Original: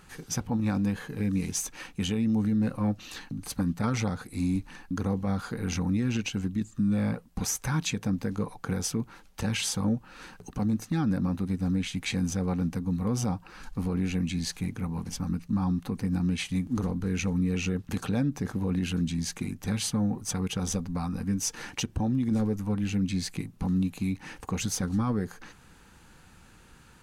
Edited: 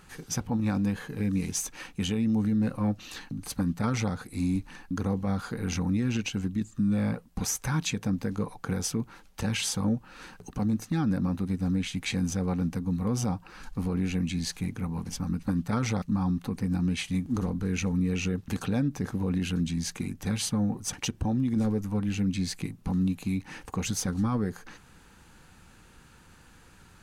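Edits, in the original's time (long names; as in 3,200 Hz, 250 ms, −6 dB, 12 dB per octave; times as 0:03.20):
0:03.54–0:04.13: duplicate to 0:15.43
0:20.34–0:21.68: remove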